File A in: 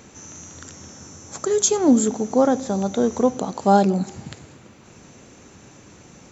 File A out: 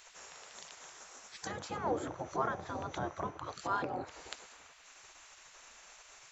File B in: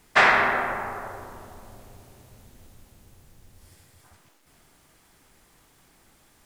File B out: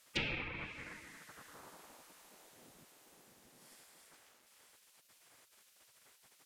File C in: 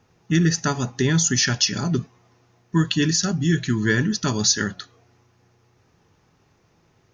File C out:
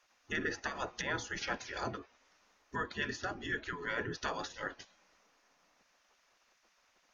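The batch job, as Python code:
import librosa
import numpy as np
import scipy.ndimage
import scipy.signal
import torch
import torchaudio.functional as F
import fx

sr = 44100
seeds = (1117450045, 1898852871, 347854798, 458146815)

y = fx.env_lowpass_down(x, sr, base_hz=1800.0, full_db=-18.0)
y = fx.spec_gate(y, sr, threshold_db=-15, keep='weak')
y = F.gain(torch.from_numpy(y), -2.5).numpy()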